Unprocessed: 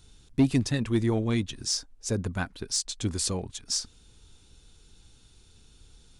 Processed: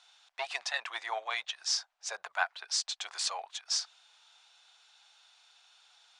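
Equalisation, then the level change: elliptic high-pass 700 Hz, stop band 60 dB; distance through air 120 m; +5.5 dB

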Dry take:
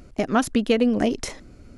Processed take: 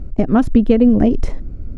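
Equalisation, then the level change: tilt EQ -4.5 dB/octave; 0.0 dB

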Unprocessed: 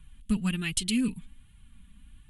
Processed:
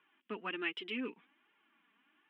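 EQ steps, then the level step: Savitzky-Golay filter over 25 samples; Chebyshev high-pass 340 Hz, order 4; distance through air 360 m; +3.5 dB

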